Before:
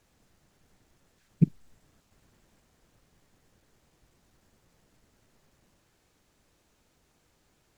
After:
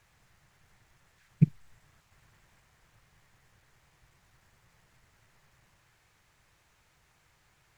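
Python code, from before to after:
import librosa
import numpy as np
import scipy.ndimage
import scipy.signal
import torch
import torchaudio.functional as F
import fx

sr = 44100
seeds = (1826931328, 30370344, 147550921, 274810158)

y = fx.graphic_eq(x, sr, hz=(125, 250, 500, 1000, 2000), db=(6, -10, -3, 4, 7))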